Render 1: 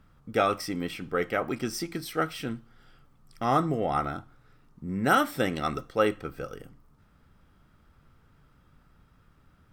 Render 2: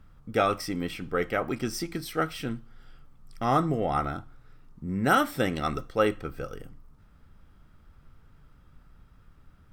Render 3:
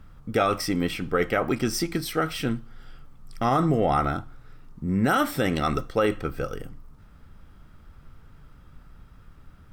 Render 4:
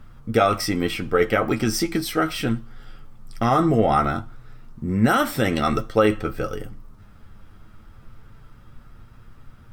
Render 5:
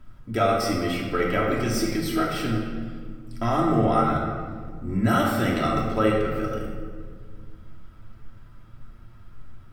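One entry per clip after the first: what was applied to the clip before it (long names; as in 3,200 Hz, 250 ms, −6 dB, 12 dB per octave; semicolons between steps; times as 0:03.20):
low-shelf EQ 65 Hz +10.5 dB
brickwall limiter −18 dBFS, peak gain reduction 9 dB; level +6 dB
flanger 0.21 Hz, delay 8.5 ms, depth 1.1 ms, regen +40%; level +7.5 dB
rectangular room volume 2,300 cubic metres, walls mixed, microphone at 2.9 metres; level −7.5 dB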